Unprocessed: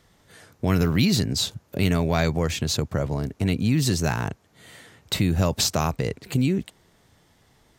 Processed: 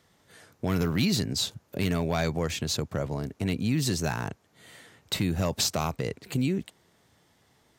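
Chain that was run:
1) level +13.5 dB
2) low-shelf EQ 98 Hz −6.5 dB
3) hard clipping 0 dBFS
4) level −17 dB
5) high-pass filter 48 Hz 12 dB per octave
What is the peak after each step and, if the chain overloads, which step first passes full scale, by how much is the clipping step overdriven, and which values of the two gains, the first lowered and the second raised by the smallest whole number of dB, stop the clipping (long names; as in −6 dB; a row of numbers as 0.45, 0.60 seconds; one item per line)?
+6.0, +5.5, 0.0, −17.0, −15.0 dBFS
step 1, 5.5 dB
step 1 +7.5 dB, step 4 −11 dB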